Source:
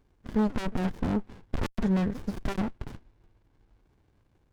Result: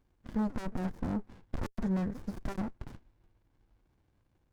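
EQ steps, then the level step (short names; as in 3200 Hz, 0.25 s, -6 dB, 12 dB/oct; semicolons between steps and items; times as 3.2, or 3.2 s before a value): notch 420 Hz, Q 12; dynamic EQ 3100 Hz, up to -7 dB, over -55 dBFS, Q 1.2; -5.5 dB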